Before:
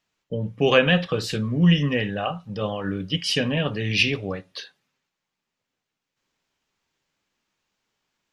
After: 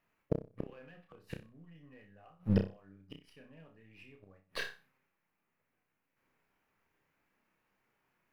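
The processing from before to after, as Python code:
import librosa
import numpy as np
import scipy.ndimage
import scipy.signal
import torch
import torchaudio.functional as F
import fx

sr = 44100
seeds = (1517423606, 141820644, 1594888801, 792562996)

p1 = np.where(x < 0.0, 10.0 ** (-3.0 / 20.0) * x, x)
p2 = fx.band_shelf(p1, sr, hz=5100.0, db=-14.5, octaves=1.7)
p3 = fx.hum_notches(p2, sr, base_hz=60, count=4)
p4 = fx.over_compress(p3, sr, threshold_db=-22.0, ratio=-0.5)
p5 = p3 + (p4 * librosa.db_to_amplitude(-0.5))
p6 = fx.leveller(p5, sr, passes=1)
p7 = fx.gate_flip(p6, sr, shuts_db=-14.0, range_db=-39)
p8 = fx.room_flutter(p7, sr, wall_m=5.3, rt60_s=0.3)
y = p8 * librosa.db_to_amplitude(-3.0)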